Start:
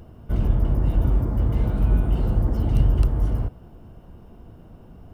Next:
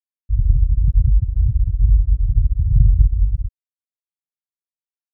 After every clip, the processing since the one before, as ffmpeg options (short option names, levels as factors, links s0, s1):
-af "afftfilt=real='re*gte(hypot(re,im),0.708)':imag='im*gte(hypot(re,im),0.708)':win_size=1024:overlap=0.75,volume=2"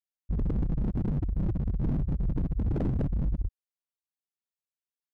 -af "aeval=exprs='0.168*(abs(mod(val(0)/0.168+3,4)-2)-1)':c=same,volume=0.473"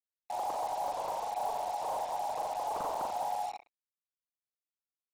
-filter_complex "[0:a]aeval=exprs='val(0)*sin(2*PI*780*n/s)':c=same,asplit=2[s0][s1];[s1]aecho=0:1:40|88|145.6|214.7|297.7:0.631|0.398|0.251|0.158|0.1[s2];[s0][s2]amix=inputs=2:normalize=0,acrusher=bits=5:mix=0:aa=0.5,volume=0.447"